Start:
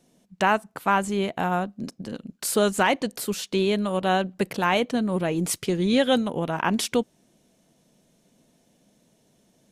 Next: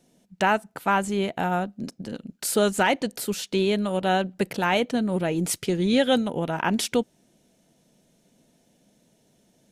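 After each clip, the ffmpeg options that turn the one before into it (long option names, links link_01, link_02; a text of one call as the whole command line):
ffmpeg -i in.wav -af "bandreject=frequency=1100:width=8" out.wav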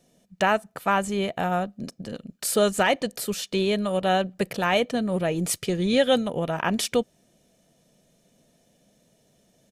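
ffmpeg -i in.wav -af "aecho=1:1:1.7:0.32" out.wav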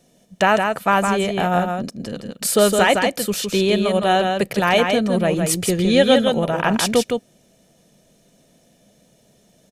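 ffmpeg -i in.wav -af "aecho=1:1:162:0.562,volume=5.5dB" out.wav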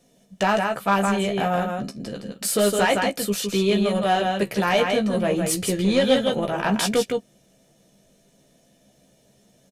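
ffmpeg -i in.wav -filter_complex "[0:a]acontrast=83,flanger=delay=4.2:depth=9:regen=-66:speed=0.29:shape=sinusoidal,asplit=2[link_01][link_02];[link_02]adelay=15,volume=-6dB[link_03];[link_01][link_03]amix=inputs=2:normalize=0,volume=-6.5dB" out.wav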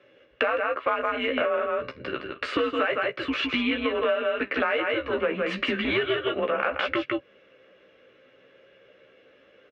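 ffmpeg -i in.wav -af "afreqshift=-140,highpass=330,equalizer=frequency=350:width_type=q:width=4:gain=-4,equalizer=frequency=570:width_type=q:width=4:gain=6,equalizer=frequency=810:width_type=q:width=4:gain=-6,equalizer=frequency=1300:width_type=q:width=4:gain=8,equalizer=frequency=1900:width_type=q:width=4:gain=5,equalizer=frequency=2700:width_type=q:width=4:gain=5,lowpass=frequency=2800:width=0.5412,lowpass=frequency=2800:width=1.3066,acompressor=threshold=-29dB:ratio=10,volume=7dB" out.wav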